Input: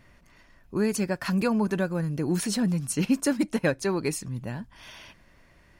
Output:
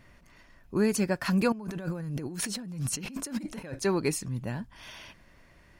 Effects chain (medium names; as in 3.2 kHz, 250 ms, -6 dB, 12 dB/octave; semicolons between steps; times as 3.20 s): 1.52–3.79 s: compressor with a negative ratio -36 dBFS, ratio -1